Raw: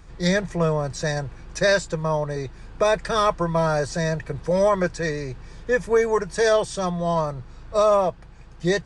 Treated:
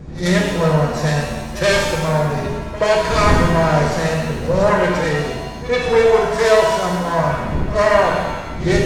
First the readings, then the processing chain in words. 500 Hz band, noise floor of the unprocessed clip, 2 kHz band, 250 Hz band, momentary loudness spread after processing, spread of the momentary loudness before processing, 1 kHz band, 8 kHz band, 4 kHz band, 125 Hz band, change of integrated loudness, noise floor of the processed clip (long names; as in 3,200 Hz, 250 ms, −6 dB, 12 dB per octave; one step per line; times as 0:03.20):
+5.5 dB, −43 dBFS, +7.0 dB, +7.5 dB, 8 LU, 10 LU, +7.0 dB, +5.0 dB, +7.0 dB, +8.5 dB, +6.0 dB, −28 dBFS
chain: phase distortion by the signal itself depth 0.17 ms
wind on the microphone 190 Hz −32 dBFS
low-pass filter 7,600 Hz 12 dB per octave
echo ahead of the sound 79 ms −16 dB
reverb with rising layers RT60 1.2 s, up +7 semitones, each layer −8 dB, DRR −1 dB
level +2 dB